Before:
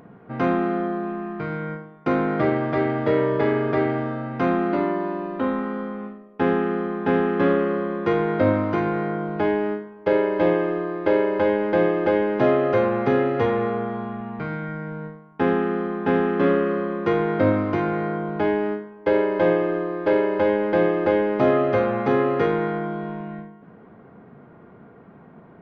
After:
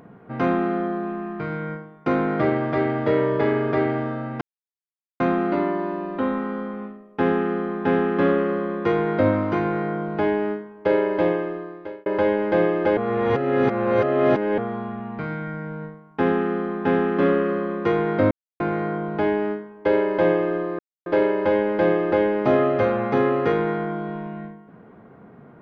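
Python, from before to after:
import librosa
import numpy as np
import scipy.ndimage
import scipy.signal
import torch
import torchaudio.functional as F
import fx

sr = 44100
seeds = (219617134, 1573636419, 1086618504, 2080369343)

y = fx.edit(x, sr, fx.insert_silence(at_s=4.41, length_s=0.79),
    fx.fade_out_span(start_s=10.33, length_s=0.94),
    fx.reverse_span(start_s=12.18, length_s=1.61),
    fx.silence(start_s=17.52, length_s=0.29),
    fx.insert_silence(at_s=20.0, length_s=0.27), tone=tone)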